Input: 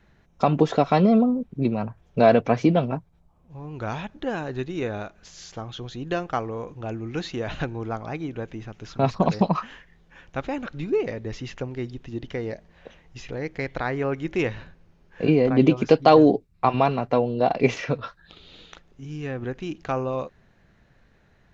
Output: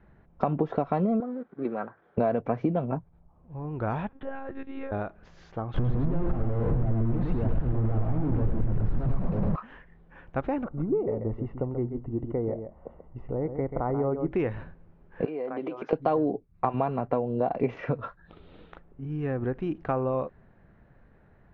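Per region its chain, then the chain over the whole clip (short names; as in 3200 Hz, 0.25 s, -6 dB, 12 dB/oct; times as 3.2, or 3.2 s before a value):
1.2–2.18 G.711 law mismatch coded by mu + speaker cabinet 460–4000 Hz, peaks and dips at 640 Hz -5 dB, 940 Hz -6 dB, 1500 Hz +7 dB, 2700 Hz -8 dB
4.09–4.92 low shelf 420 Hz -9 dB + compressor 2.5:1, threshold -34 dBFS + monotone LPC vocoder at 8 kHz 270 Hz
5.74–9.56 infinite clipping + tilt -4.5 dB/oct + echo 0.106 s -3.5 dB
10.64–14.32 polynomial smoothing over 65 samples + echo 0.135 s -9 dB
15.25–15.93 HPF 500 Hz + compressor 5:1, threshold -31 dBFS
18.05–19.19 air absorption 80 m + mismatched tape noise reduction decoder only
whole clip: LPF 1400 Hz 12 dB/oct; compressor 5:1, threshold -25 dBFS; gain +2 dB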